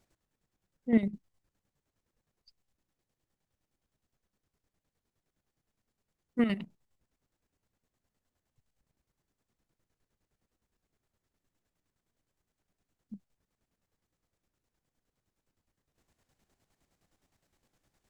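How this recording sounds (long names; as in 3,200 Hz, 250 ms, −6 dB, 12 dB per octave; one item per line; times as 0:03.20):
chopped level 9.7 Hz, depth 60%, duty 45%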